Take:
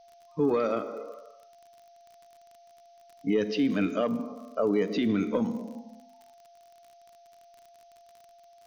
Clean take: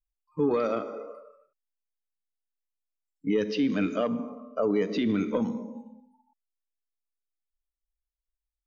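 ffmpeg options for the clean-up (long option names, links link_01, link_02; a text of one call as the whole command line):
ffmpeg -i in.wav -af "adeclick=threshold=4,bandreject=frequency=690:width=30,afftdn=noise_reduction=30:noise_floor=-56" out.wav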